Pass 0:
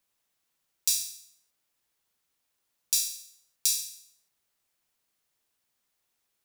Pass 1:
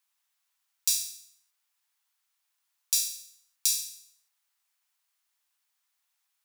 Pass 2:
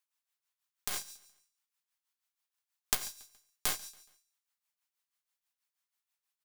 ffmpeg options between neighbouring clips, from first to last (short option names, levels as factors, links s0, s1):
-af "highpass=f=820:w=0.5412,highpass=f=820:w=1.3066"
-af "aeval=exprs='0.631*(cos(1*acos(clip(val(0)/0.631,-1,1)))-cos(1*PI/2))+0.158*(cos(4*acos(clip(val(0)/0.631,-1,1)))-cos(4*PI/2))+0.126*(cos(7*acos(clip(val(0)/0.631,-1,1)))-cos(7*PI/2))':c=same,tremolo=f=6.2:d=0.7,aecho=1:1:140|280|420:0.0631|0.0284|0.0128,volume=1.26"